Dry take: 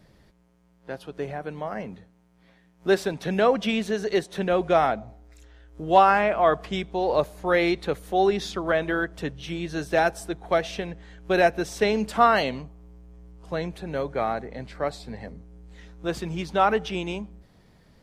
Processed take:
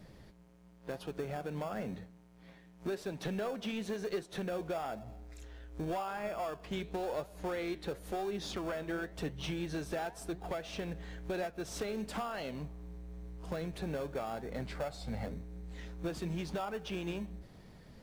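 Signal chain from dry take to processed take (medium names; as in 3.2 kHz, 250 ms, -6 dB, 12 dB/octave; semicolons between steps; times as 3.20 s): 14.80–15.26 s: comb 1.4 ms, depth 79%; compression 12:1, threshold -33 dBFS, peak gain reduction 21.5 dB; in parallel at -10 dB: sample-and-hold 22×; on the sum: saturation -28.5 dBFS, distortion -16 dB; flange 0.96 Hz, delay 4.7 ms, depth 8.6 ms, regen +83%; trim +4 dB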